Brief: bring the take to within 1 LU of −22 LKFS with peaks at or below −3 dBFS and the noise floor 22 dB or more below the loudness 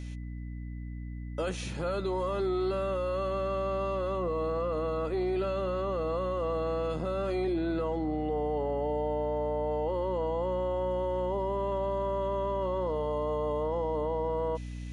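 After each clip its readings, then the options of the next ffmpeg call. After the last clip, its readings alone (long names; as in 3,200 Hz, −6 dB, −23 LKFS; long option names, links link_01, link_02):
mains hum 60 Hz; hum harmonics up to 300 Hz; level of the hum −36 dBFS; interfering tone 2,000 Hz; level of the tone −59 dBFS; integrated loudness −31.5 LKFS; sample peak −21.5 dBFS; target loudness −22.0 LKFS
→ -af "bandreject=frequency=60:width_type=h:width=6,bandreject=frequency=120:width_type=h:width=6,bandreject=frequency=180:width_type=h:width=6,bandreject=frequency=240:width_type=h:width=6,bandreject=frequency=300:width_type=h:width=6"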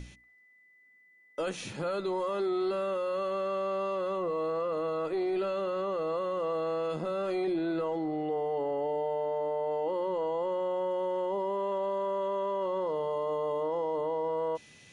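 mains hum none found; interfering tone 2,000 Hz; level of the tone −59 dBFS
→ -af "bandreject=frequency=2000:width=30"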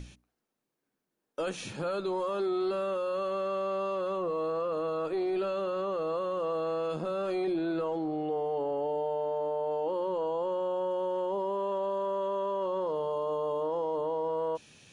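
interfering tone none found; integrated loudness −32.0 LKFS; sample peak −23.5 dBFS; target loudness −22.0 LKFS
→ -af "volume=10dB"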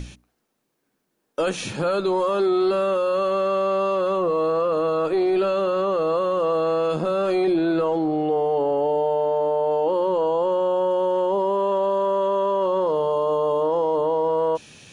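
integrated loudness −22.0 LKFS; sample peak −13.5 dBFS; background noise floor −74 dBFS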